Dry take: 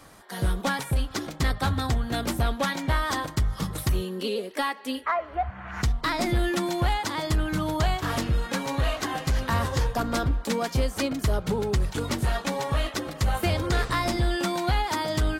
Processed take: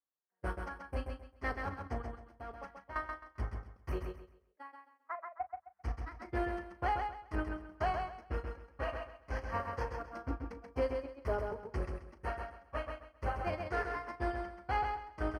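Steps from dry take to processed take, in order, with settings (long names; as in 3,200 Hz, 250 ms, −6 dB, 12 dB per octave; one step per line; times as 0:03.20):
noise gate −21 dBFS, range −56 dB
high-pass filter 110 Hz 12 dB per octave
parametric band 150 Hz −12 dB 1.4 octaves
in parallel at −5 dB: wave folding −34 dBFS
0:02.33–0:02.96: on the sum: output level in coarse steps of 15 dB
moving average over 12 samples
double-tracking delay 36 ms −13 dB
on a send: repeating echo 132 ms, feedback 27%, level −5 dB
on the sum: level +1.5 dB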